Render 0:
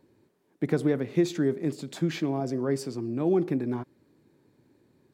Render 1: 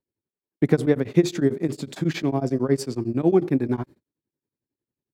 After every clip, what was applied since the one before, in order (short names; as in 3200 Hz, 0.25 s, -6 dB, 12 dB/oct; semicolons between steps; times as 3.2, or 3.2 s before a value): gate -51 dBFS, range -32 dB; low shelf 69 Hz +9 dB; beating tremolo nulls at 11 Hz; gain +7.5 dB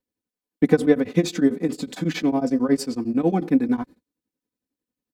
comb 4 ms, depth 79%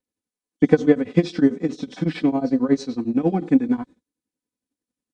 nonlinear frequency compression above 3000 Hz 1.5:1; transient shaper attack +6 dB, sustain 0 dB; harmonic-percussive split percussive -3 dB; gain -1 dB